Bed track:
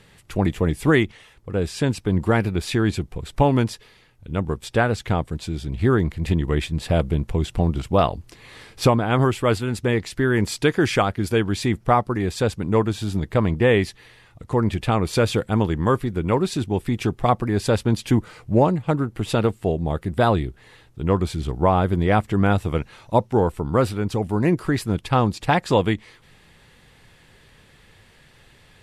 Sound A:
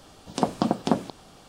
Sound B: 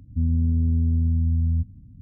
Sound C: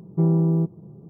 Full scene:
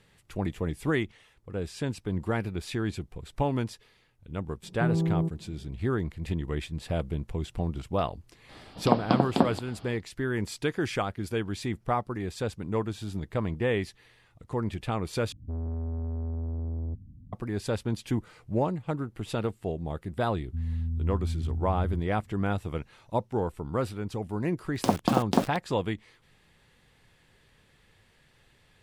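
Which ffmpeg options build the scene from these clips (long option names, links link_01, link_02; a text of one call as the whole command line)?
ffmpeg -i bed.wav -i cue0.wav -i cue1.wav -i cue2.wav -filter_complex "[1:a]asplit=2[link_01][link_02];[2:a]asplit=2[link_03][link_04];[0:a]volume=-10dB[link_05];[link_01]aresample=11025,aresample=44100[link_06];[link_03]asoftclip=type=tanh:threshold=-27dB[link_07];[link_04]lowshelf=frequency=140:gain=11.5[link_08];[link_02]aeval=exprs='val(0)*gte(abs(val(0)),0.0299)':channel_layout=same[link_09];[link_05]asplit=2[link_10][link_11];[link_10]atrim=end=15.324[link_12];[link_07]atrim=end=2.01,asetpts=PTS-STARTPTS,volume=-3.5dB[link_13];[link_11]atrim=start=17.326[link_14];[3:a]atrim=end=1.09,asetpts=PTS-STARTPTS,volume=-7dB,afade=type=in:duration=0.004:curve=hsin,afade=type=out:start_time=1.086:duration=0.004:curve=hsin,adelay=4630[link_15];[link_06]atrim=end=1.48,asetpts=PTS-STARTPTS,afade=type=in:duration=0.004:curve=hsin,afade=type=out:start_time=1.476:duration=0.004:curve=hsin,adelay=8490[link_16];[link_08]atrim=end=2.01,asetpts=PTS-STARTPTS,volume=-17.5dB,afade=type=in:duration=0.004:curve=hsin,afade=type=out:start_time=2.006:duration=0.004:curve=hsin,adelay=20370[link_17];[link_09]atrim=end=1.48,asetpts=PTS-STARTPTS,volume=-1dB,afade=type=in:duration=0.004:curve=hsin,afade=type=out:start_time=1.476:duration=0.004:curve=hsin,adelay=24460[link_18];[link_12][link_13]acrossfade=duration=0.004:curve1=hsin:curve2=hsin[link_19];[link_19][link_14]acrossfade=duration=0.004:curve1=hsin:curve2=hsin[link_20];[link_20][link_15][link_16][link_17][link_18]amix=inputs=5:normalize=0" out.wav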